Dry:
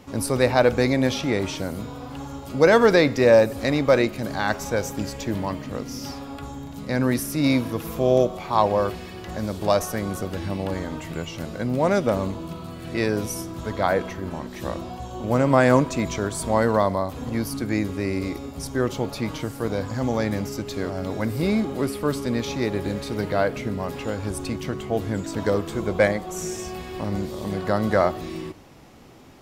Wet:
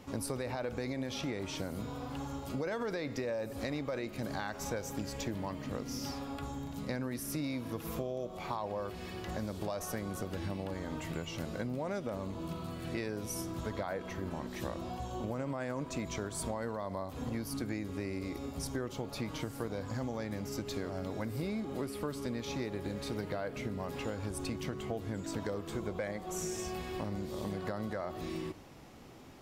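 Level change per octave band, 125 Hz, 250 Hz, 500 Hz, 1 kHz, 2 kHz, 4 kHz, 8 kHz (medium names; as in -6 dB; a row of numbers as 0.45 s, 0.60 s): -12.0 dB, -13.0 dB, -16.5 dB, -15.0 dB, -15.5 dB, -11.5 dB, -9.0 dB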